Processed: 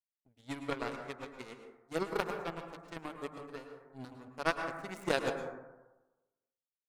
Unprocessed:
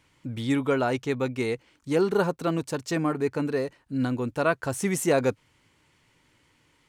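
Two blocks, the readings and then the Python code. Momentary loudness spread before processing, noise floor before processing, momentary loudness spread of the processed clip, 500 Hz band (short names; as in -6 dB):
7 LU, -66 dBFS, 16 LU, -12.5 dB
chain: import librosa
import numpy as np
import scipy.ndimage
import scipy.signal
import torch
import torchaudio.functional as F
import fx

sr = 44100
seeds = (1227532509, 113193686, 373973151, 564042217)

y = fx.hum_notches(x, sr, base_hz=50, count=4)
y = fx.power_curve(y, sr, exponent=3.0)
y = fx.rev_plate(y, sr, seeds[0], rt60_s=1.1, hf_ratio=0.3, predelay_ms=95, drr_db=5.5)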